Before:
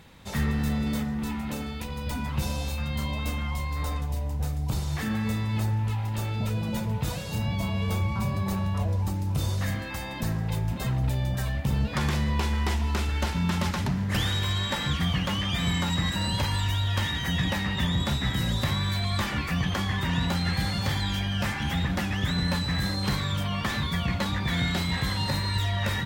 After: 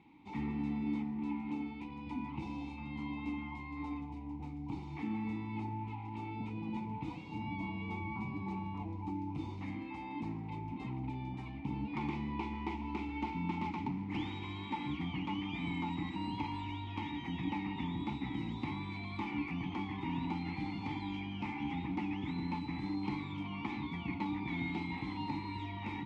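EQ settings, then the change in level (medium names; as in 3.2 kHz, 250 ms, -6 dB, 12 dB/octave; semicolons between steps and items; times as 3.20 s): vowel filter u; distance through air 56 m; bass shelf 130 Hz +5.5 dB; +4.0 dB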